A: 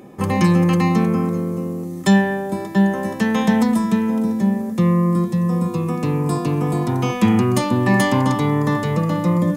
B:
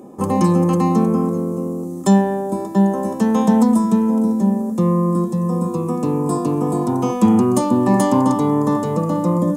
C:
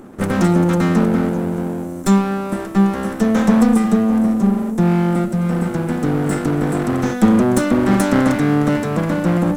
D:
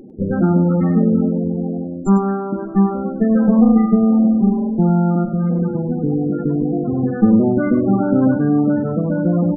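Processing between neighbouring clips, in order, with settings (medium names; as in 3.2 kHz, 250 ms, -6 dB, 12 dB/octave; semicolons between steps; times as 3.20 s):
graphic EQ 125/250/500/1000/2000/4000/8000 Hz -4/+7/+4/+7/-11/-4/+7 dB; trim -3 dB
comb filter that takes the minimum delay 0.53 ms; trim +1.5 dB
loudest bins only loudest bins 16; echo from a far wall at 17 m, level -10 dB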